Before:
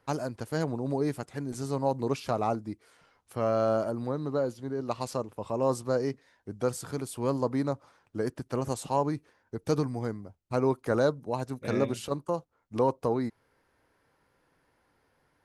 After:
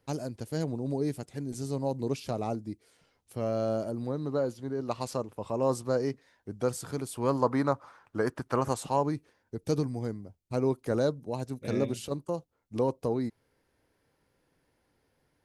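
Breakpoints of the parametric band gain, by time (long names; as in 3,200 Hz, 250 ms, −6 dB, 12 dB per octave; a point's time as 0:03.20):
parametric band 1,200 Hz 1.6 octaves
0:03.87 −10.5 dB
0:04.40 −1.5 dB
0:07.07 −1.5 dB
0:07.51 +9.5 dB
0:08.61 +9.5 dB
0:08.88 +1 dB
0:09.56 −8 dB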